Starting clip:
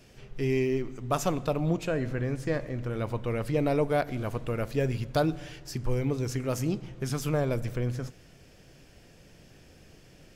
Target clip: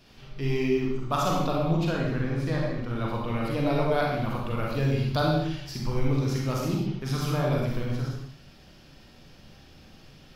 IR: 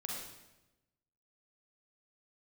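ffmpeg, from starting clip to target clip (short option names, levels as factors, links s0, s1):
-filter_complex "[0:a]equalizer=f=500:t=o:w=1:g=-5,equalizer=f=1000:t=o:w=1:g=5,equalizer=f=2000:t=o:w=1:g=-3,equalizer=f=4000:t=o:w=1:g=8,equalizer=f=8000:t=o:w=1:g=-9[s0];[1:a]atrim=start_sample=2205,afade=t=out:st=0.34:d=0.01,atrim=end_sample=15435,asetrate=48510,aresample=44100[s1];[s0][s1]afir=irnorm=-1:irlink=0,volume=1.5"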